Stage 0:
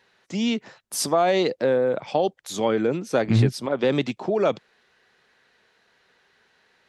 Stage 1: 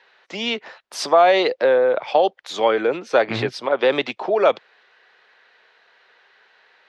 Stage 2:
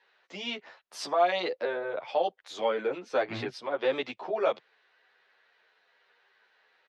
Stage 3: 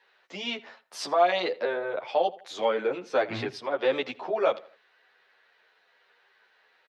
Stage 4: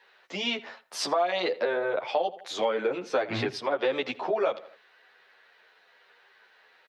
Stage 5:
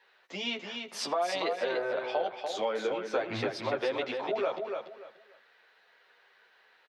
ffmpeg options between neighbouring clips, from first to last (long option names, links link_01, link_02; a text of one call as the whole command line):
ffmpeg -i in.wav -filter_complex "[0:a]acrossover=split=420 4700:gain=0.0891 1 0.0708[link_01][link_02][link_03];[link_01][link_02][link_03]amix=inputs=3:normalize=0,volume=8dB" out.wav
ffmpeg -i in.wav -filter_complex "[0:a]asplit=2[link_01][link_02];[link_02]adelay=10.6,afreqshift=-1.1[link_03];[link_01][link_03]amix=inputs=2:normalize=1,volume=-8dB" out.wav
ffmpeg -i in.wav -filter_complex "[0:a]asplit=2[link_01][link_02];[link_02]adelay=81,lowpass=frequency=3900:poles=1,volume=-19.5dB,asplit=2[link_03][link_04];[link_04]adelay=81,lowpass=frequency=3900:poles=1,volume=0.37,asplit=2[link_05][link_06];[link_06]adelay=81,lowpass=frequency=3900:poles=1,volume=0.37[link_07];[link_01][link_03][link_05][link_07]amix=inputs=4:normalize=0,volume=2.5dB" out.wav
ffmpeg -i in.wav -af "acompressor=threshold=-28dB:ratio=4,volume=4.5dB" out.wav
ffmpeg -i in.wav -af "aecho=1:1:291|582|873:0.531|0.122|0.0281,volume=-4.5dB" out.wav